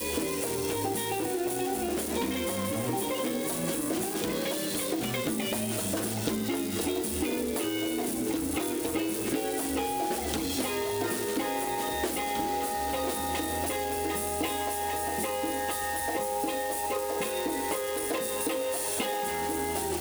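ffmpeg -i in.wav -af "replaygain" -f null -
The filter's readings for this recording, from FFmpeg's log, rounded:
track_gain = +14.0 dB
track_peak = 0.106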